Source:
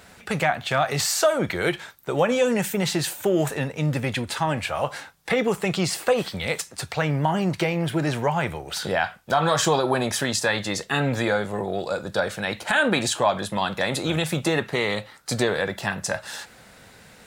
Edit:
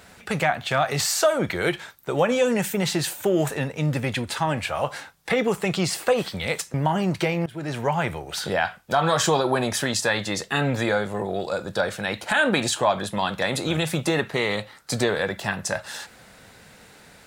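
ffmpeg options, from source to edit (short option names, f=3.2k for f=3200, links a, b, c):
-filter_complex "[0:a]asplit=3[a][b][c];[a]atrim=end=6.742[d];[b]atrim=start=7.128:end=7.85,asetpts=PTS-STARTPTS,afade=t=out:st=0.718:d=0.004:c=hsin:silence=0.1[e];[c]atrim=start=7.85,asetpts=PTS-STARTPTS,afade=t=in:d=0.45:silence=0.1[f];[e][f]concat=n=2:v=0:a=1[g];[d][g]acrossfade=d=0.004:c1=hsin:c2=hsin"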